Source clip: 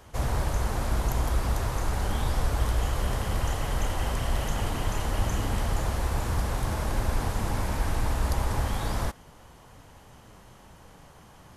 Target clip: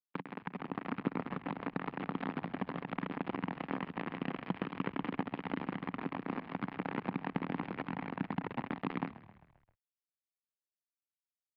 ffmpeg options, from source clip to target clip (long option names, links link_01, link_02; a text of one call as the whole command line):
ffmpeg -i in.wav -filter_complex "[0:a]dynaudnorm=framelen=140:gausssize=11:maxgain=7.5dB,asplit=2[link_01][link_02];[link_02]alimiter=limit=-12dB:level=0:latency=1:release=59,volume=1dB[link_03];[link_01][link_03]amix=inputs=2:normalize=0,acompressor=threshold=-24dB:ratio=5,aresample=11025,acrusher=bits=2:mix=0:aa=0.5,aresample=44100,highpass=frequency=160:width=0.5412,highpass=frequency=160:width=1.3066,equalizer=frequency=180:width_type=q:width=4:gain=7,equalizer=frequency=270:width_type=q:width=4:gain=9,equalizer=frequency=610:width_type=q:width=4:gain=-6,equalizer=frequency=1500:width_type=q:width=4:gain=-4,lowpass=frequency=2500:width=0.5412,lowpass=frequency=2500:width=1.3066,asplit=6[link_04][link_05][link_06][link_07][link_08][link_09];[link_05]adelay=132,afreqshift=-33,volume=-16.5dB[link_10];[link_06]adelay=264,afreqshift=-66,volume=-21.7dB[link_11];[link_07]adelay=396,afreqshift=-99,volume=-26.9dB[link_12];[link_08]adelay=528,afreqshift=-132,volume=-32.1dB[link_13];[link_09]adelay=660,afreqshift=-165,volume=-37.3dB[link_14];[link_04][link_10][link_11][link_12][link_13][link_14]amix=inputs=6:normalize=0,volume=1dB" out.wav